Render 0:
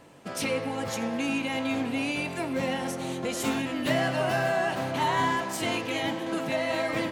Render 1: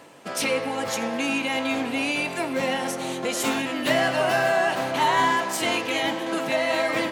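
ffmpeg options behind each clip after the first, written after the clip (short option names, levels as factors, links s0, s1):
-af "highpass=f=370:p=1,areverse,acompressor=mode=upward:threshold=0.00501:ratio=2.5,areverse,volume=2"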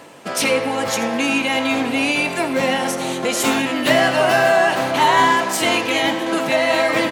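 -af "aecho=1:1:81:0.168,volume=2.11"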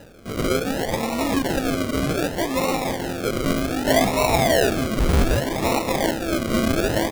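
-af "acrusher=samples=39:mix=1:aa=0.000001:lfo=1:lforange=23.4:lforate=0.65,volume=0.668"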